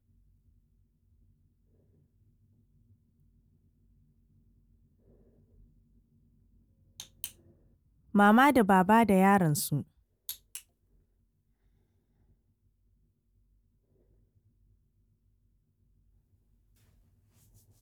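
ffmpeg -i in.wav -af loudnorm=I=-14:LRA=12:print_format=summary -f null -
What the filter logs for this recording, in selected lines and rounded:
Input Integrated:    -24.7 LUFS
Input True Peak:     -11.9 dBTP
Input LRA:            23.9 LU
Input Threshold:     -42.1 LUFS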